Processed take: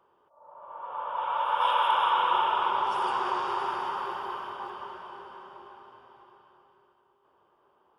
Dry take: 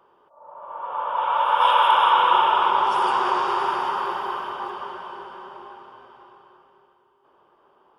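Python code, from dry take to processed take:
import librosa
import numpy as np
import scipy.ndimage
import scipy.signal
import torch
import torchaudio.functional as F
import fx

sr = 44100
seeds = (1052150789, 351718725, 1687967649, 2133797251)

p1 = fx.peak_eq(x, sr, hz=85.0, db=5.5, octaves=1.0)
p2 = p1 + fx.echo_feedback(p1, sr, ms=512, feedback_pct=53, wet_db=-18.0, dry=0)
y = p2 * 10.0 ** (-7.5 / 20.0)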